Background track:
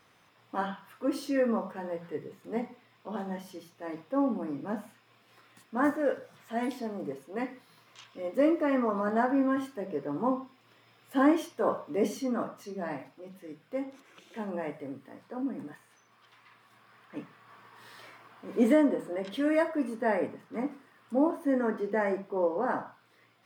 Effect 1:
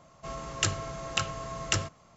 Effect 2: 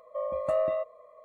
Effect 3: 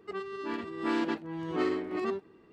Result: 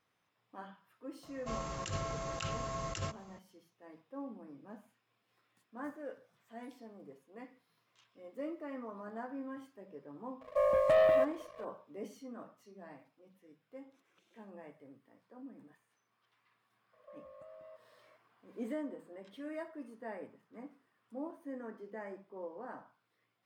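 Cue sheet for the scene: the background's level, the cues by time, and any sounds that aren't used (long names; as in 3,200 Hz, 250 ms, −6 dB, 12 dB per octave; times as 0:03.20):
background track −16.5 dB
0:01.23: mix in 1 −3.5 dB + compressor whose output falls as the input rises −33 dBFS
0:10.41: mix in 2 −3 dB + leveller curve on the samples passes 2
0:16.93: mix in 2 −13.5 dB + downward compressor 10 to 1, threshold −37 dBFS
not used: 3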